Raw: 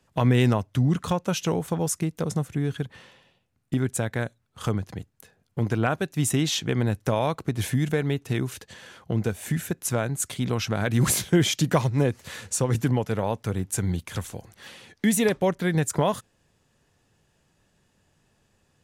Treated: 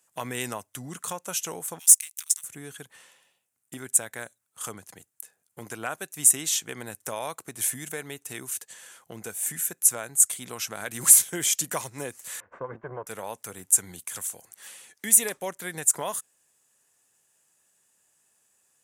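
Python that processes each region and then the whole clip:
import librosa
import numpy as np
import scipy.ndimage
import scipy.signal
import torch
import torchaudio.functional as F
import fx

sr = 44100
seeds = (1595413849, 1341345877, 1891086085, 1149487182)

y = fx.chain(x, sr, fx.cheby2_bandstop(low_hz=180.0, high_hz=490.0, order=4, stop_db=80),
    fx.dynamic_eq(hz=1700.0, q=1.5, threshold_db=-57.0, ratio=4.0, max_db=-5),
    fx.leveller(passes=2), at=(1.79, 2.44))
y = fx.chain(y, sr, fx.lower_of_two(delay_ms=1.9),
    fx.lowpass(hz=1500.0, slope=24), at=(12.4, 13.07))
y = fx.highpass(y, sr, hz=1200.0, slope=6)
y = fx.high_shelf_res(y, sr, hz=6100.0, db=11.5, q=1.5)
y = F.gain(torch.from_numpy(y), -2.0).numpy()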